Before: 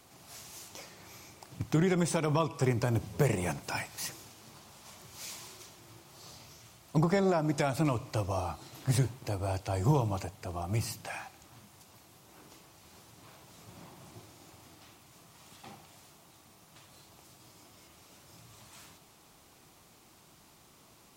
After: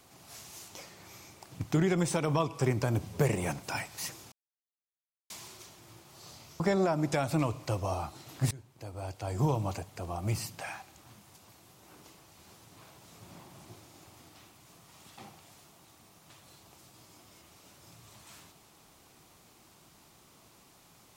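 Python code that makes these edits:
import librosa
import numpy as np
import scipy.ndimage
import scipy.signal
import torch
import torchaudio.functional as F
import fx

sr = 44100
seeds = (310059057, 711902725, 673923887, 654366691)

y = fx.edit(x, sr, fx.silence(start_s=4.32, length_s=0.98),
    fx.cut(start_s=6.6, length_s=0.46),
    fx.fade_in_from(start_s=8.97, length_s=1.18, floor_db=-23.0), tone=tone)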